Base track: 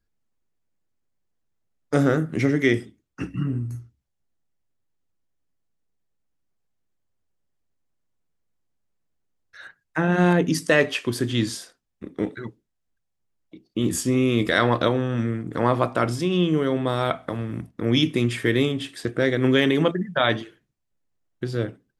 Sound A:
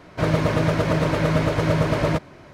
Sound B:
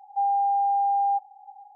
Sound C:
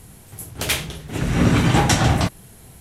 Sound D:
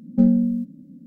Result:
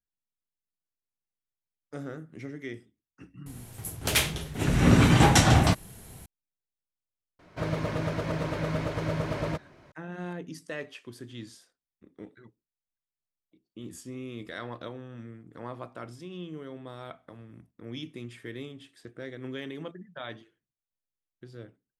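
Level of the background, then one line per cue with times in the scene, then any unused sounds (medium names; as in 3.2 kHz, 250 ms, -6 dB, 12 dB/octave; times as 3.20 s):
base track -19 dB
3.46 s: add C -2.5 dB
7.39 s: add A -10 dB
not used: B, D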